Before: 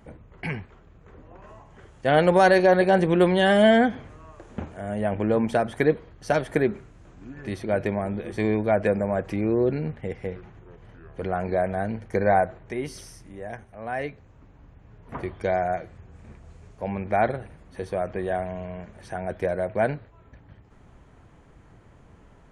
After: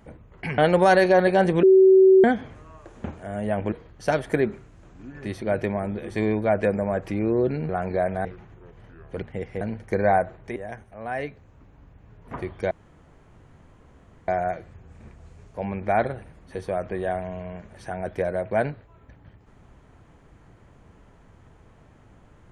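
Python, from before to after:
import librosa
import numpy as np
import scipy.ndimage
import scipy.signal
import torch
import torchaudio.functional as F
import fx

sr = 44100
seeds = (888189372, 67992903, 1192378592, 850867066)

y = fx.edit(x, sr, fx.cut(start_s=0.58, length_s=1.54),
    fx.bleep(start_s=3.17, length_s=0.61, hz=380.0, db=-10.0),
    fx.cut(start_s=5.26, length_s=0.68),
    fx.swap(start_s=9.91, length_s=0.39, other_s=11.27, other_length_s=0.56),
    fx.cut(start_s=12.78, length_s=0.59),
    fx.insert_room_tone(at_s=15.52, length_s=1.57), tone=tone)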